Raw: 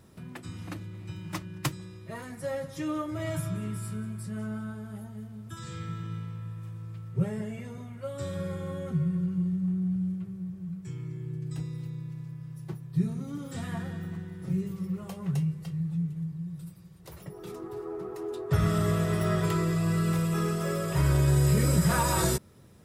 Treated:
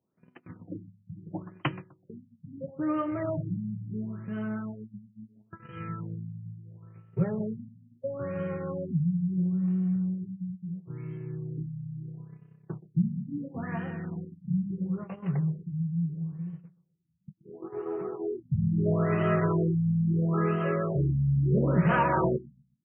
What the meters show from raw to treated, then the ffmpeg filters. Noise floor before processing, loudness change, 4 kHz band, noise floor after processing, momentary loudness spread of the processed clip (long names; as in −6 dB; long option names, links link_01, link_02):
−47 dBFS, +1.0 dB, below −10 dB, −68 dBFS, 19 LU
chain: -filter_complex "[0:a]agate=range=-26dB:threshold=-38dB:ratio=16:detection=peak,highpass=160,lowpass=6600,asplit=2[link_01][link_02];[link_02]adelay=126,lowpass=frequency=2000:poles=1,volume=-17.5dB,asplit=2[link_03][link_04];[link_04]adelay=126,lowpass=frequency=2000:poles=1,volume=0.3,asplit=2[link_05][link_06];[link_06]adelay=126,lowpass=frequency=2000:poles=1,volume=0.3[link_07];[link_01][link_03][link_05][link_07]amix=inputs=4:normalize=0,afftfilt=real='re*lt(b*sr/1024,220*pow(3200/220,0.5+0.5*sin(2*PI*0.74*pts/sr)))':imag='im*lt(b*sr/1024,220*pow(3200/220,0.5+0.5*sin(2*PI*0.74*pts/sr)))':win_size=1024:overlap=0.75,volume=3.5dB"